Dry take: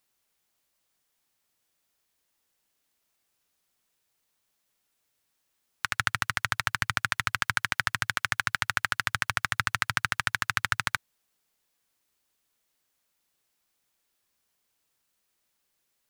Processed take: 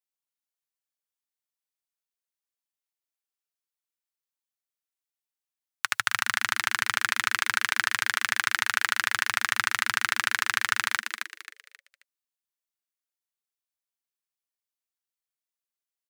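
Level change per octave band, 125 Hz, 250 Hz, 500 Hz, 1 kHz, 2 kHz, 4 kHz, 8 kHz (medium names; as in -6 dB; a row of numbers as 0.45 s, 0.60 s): -12.0 dB, -5.0 dB, -0.5 dB, +2.0 dB, +3.0 dB, +4.0 dB, +5.0 dB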